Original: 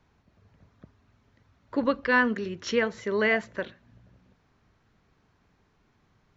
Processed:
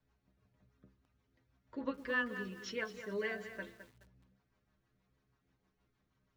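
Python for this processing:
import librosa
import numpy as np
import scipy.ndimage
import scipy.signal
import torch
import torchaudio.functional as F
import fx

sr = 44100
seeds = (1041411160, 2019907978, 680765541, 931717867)

y = fx.stiff_resonator(x, sr, f0_hz=62.0, decay_s=0.32, stiffness=0.008)
y = fx.rotary(y, sr, hz=6.3)
y = fx.echo_crushed(y, sr, ms=211, feedback_pct=35, bits=9, wet_db=-10.5)
y = y * librosa.db_to_amplitude(-2.5)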